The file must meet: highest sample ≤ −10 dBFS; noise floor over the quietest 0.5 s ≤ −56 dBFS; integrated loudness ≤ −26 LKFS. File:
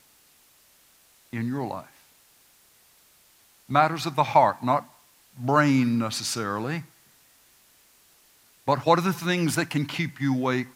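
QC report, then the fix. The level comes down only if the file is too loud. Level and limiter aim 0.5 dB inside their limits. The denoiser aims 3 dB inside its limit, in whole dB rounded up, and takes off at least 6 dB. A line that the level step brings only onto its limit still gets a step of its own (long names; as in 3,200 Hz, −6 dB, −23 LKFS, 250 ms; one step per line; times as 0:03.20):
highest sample −5.0 dBFS: out of spec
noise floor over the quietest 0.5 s −59 dBFS: in spec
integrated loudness −24.5 LKFS: out of spec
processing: level −2 dB
brickwall limiter −10.5 dBFS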